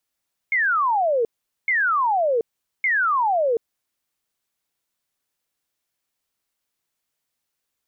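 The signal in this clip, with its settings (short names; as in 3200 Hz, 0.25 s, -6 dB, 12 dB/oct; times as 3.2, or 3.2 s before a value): burst of laser zaps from 2200 Hz, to 440 Hz, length 0.73 s sine, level -17 dB, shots 3, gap 0.43 s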